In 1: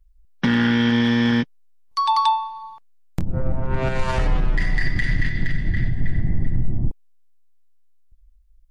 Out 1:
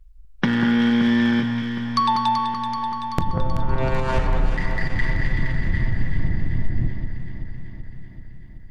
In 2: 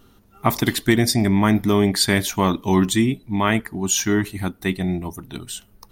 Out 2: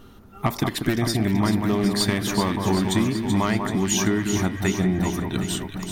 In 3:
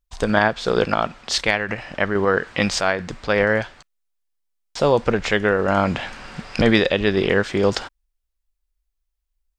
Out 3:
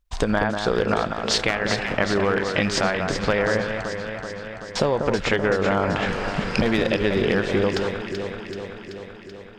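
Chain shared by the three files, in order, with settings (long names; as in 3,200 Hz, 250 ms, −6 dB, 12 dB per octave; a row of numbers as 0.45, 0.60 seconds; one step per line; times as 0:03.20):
wavefolder on the positive side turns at −10.5 dBFS
high-shelf EQ 4,500 Hz −6.5 dB
downward compressor 6 to 1, threshold −26 dBFS
delay that swaps between a low-pass and a high-pass 191 ms, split 1,700 Hz, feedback 81%, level −5.5 dB
every ending faded ahead of time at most 340 dB per second
loudness normalisation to −23 LKFS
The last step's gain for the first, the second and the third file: +8.0, +6.0, +7.0 decibels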